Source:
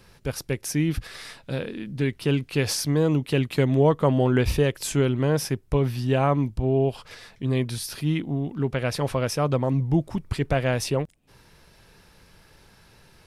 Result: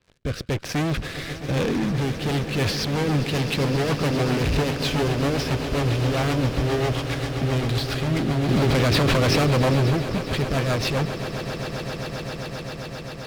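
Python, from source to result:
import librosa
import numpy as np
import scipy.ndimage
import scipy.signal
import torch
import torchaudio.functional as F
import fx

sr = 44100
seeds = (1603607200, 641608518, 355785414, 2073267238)

p1 = scipy.signal.sosfilt(scipy.signal.butter(4, 4100.0, 'lowpass', fs=sr, output='sos'), x)
p2 = fx.notch(p1, sr, hz=840.0, q=12.0)
p3 = fx.leveller(p2, sr, passes=5)
p4 = fx.clip_asym(p3, sr, top_db=-17.0, bottom_db=-14.5)
p5 = fx.rotary_switch(p4, sr, hz=1.0, then_hz=7.5, switch_at_s=2.07)
p6 = p5 + fx.echo_swell(p5, sr, ms=132, loudest=8, wet_db=-14.5, dry=0)
p7 = fx.env_flatten(p6, sr, amount_pct=100, at=(8.48, 9.91), fade=0.02)
y = F.gain(torch.from_numpy(p7), -4.5).numpy()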